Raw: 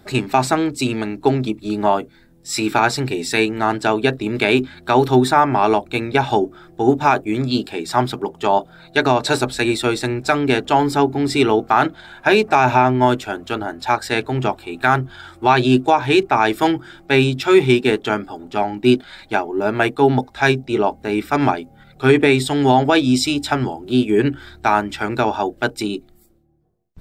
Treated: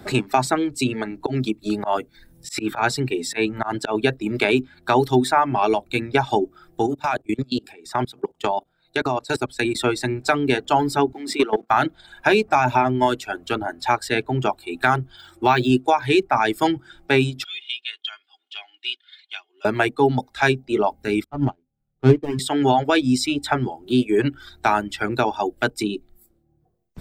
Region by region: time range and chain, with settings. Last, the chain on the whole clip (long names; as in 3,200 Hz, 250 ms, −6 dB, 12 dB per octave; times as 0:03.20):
0:01.20–0:03.95: volume swells 123 ms + upward compression, threshold −40 dBFS
0:06.86–0:09.75: parametric band 170 Hz −5.5 dB 0.21 octaves + output level in coarse steps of 20 dB
0:11.12–0:11.70: Chebyshev high-pass filter 190 Hz, order 4 + output level in coarse steps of 14 dB + leveller curve on the samples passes 1
0:15.17–0:15.70: high-pass filter 43 Hz + linearly interpolated sample-rate reduction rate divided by 2×
0:17.44–0:19.65: four-pole ladder band-pass 3,400 Hz, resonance 70% + comb filter 2.8 ms, depth 69%
0:21.24–0:22.39: running median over 25 samples + RIAA equalisation playback + expander for the loud parts 2.5 to 1, over −24 dBFS
whole clip: parametric band 8,700 Hz +2 dB 0.3 octaves; reverb reduction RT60 1.2 s; multiband upward and downward compressor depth 40%; level −2 dB